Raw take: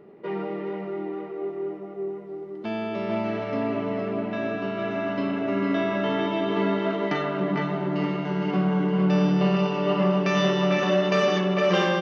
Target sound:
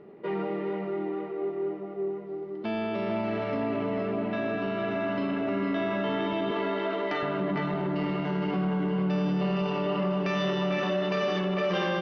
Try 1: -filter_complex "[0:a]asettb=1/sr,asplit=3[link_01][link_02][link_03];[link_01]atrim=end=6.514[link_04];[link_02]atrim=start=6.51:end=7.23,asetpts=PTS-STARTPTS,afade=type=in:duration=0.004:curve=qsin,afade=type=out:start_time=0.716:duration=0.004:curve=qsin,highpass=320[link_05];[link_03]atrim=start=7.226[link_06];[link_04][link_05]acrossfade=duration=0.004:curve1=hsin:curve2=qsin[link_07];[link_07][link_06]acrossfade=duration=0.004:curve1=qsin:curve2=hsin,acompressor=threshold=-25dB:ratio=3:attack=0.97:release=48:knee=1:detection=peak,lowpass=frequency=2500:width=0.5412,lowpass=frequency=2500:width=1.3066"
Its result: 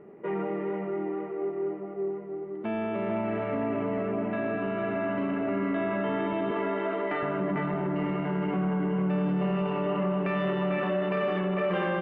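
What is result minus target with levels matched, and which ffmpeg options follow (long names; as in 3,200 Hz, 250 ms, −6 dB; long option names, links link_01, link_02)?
4,000 Hz band −8.5 dB
-filter_complex "[0:a]asettb=1/sr,asplit=3[link_01][link_02][link_03];[link_01]atrim=end=6.514[link_04];[link_02]atrim=start=6.51:end=7.23,asetpts=PTS-STARTPTS,afade=type=in:duration=0.004:curve=qsin,afade=type=out:start_time=0.716:duration=0.004:curve=qsin,highpass=320[link_05];[link_03]atrim=start=7.226[link_06];[link_04][link_05]acrossfade=duration=0.004:curve1=hsin:curve2=qsin[link_07];[link_07][link_06]acrossfade=duration=0.004:curve1=qsin:curve2=hsin,acompressor=threshold=-25dB:ratio=3:attack=0.97:release=48:knee=1:detection=peak,lowpass=frequency=5300:width=0.5412,lowpass=frequency=5300:width=1.3066"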